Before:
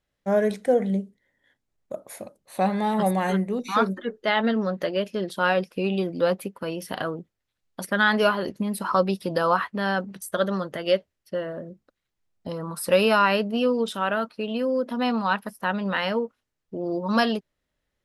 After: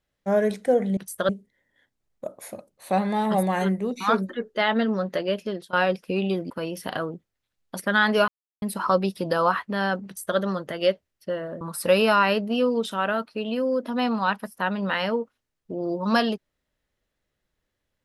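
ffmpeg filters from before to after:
ffmpeg -i in.wav -filter_complex "[0:a]asplit=8[link_01][link_02][link_03][link_04][link_05][link_06][link_07][link_08];[link_01]atrim=end=0.972[link_09];[link_02]atrim=start=10.108:end=10.432[link_10];[link_03]atrim=start=0.968:end=5.41,asetpts=PTS-STARTPTS,afade=type=out:start_time=4.162:duration=0.28:silence=0.105925[link_11];[link_04]atrim=start=5.41:end=6.182,asetpts=PTS-STARTPTS,afade=type=in:duration=0.004:curve=hsin:silence=0.105925[link_12];[link_05]atrim=start=6.548:end=8.33,asetpts=PTS-STARTPTS,afade=type=out:start_time=1.778:duration=0.004:curve=hsin[link_13];[link_06]atrim=start=8.33:end=8.67,asetpts=PTS-STARTPTS,volume=0[link_14];[link_07]atrim=start=8.67:end=11.662,asetpts=PTS-STARTPTS,afade=type=in:duration=0.004:curve=hsin[link_15];[link_08]atrim=start=12.638[link_16];[link_09][link_10]acrossfade=duration=0.004:curve1=hsin:curve2=hsin[link_17];[link_11][link_12]concat=n=2:v=0:a=1[link_18];[link_17][link_18]acrossfade=duration=0.004:curve1=hsin:curve2=hsin[link_19];[link_13][link_14][link_15]concat=n=3:v=0:a=1[link_20];[link_19][link_20]acrossfade=duration=0.004:curve1=hsin:curve2=hsin[link_21];[link_21][link_16]acrossfade=duration=0.004:curve1=hsin:curve2=hsin" out.wav

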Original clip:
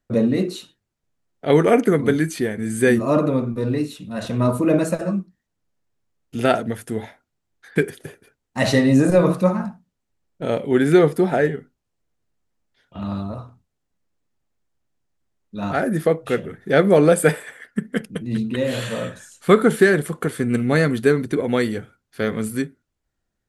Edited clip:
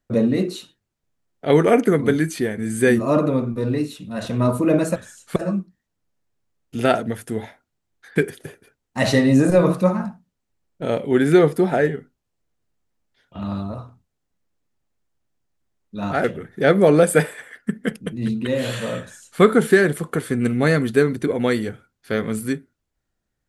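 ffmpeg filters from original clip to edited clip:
ffmpeg -i in.wav -filter_complex "[0:a]asplit=4[link_01][link_02][link_03][link_04];[link_01]atrim=end=4.962[link_05];[link_02]atrim=start=19.098:end=19.502[link_06];[link_03]atrim=start=4.958:end=15.842[link_07];[link_04]atrim=start=16.328[link_08];[link_05][link_06]acrossfade=duration=0.004:curve1=hsin:curve2=hsin[link_09];[link_09][link_07]acrossfade=duration=0.004:curve1=hsin:curve2=hsin[link_10];[link_10][link_08]acrossfade=duration=0.004:curve1=hsin:curve2=hsin" out.wav

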